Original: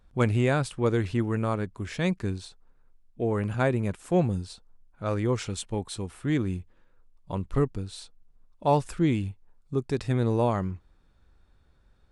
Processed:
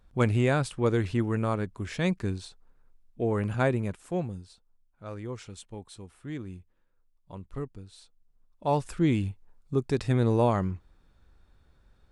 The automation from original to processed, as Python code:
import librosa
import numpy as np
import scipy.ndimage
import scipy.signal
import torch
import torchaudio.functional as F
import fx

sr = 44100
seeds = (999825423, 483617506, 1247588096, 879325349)

y = fx.gain(x, sr, db=fx.line((3.69, -0.5), (4.45, -11.0), (7.92, -11.0), (9.2, 1.0)))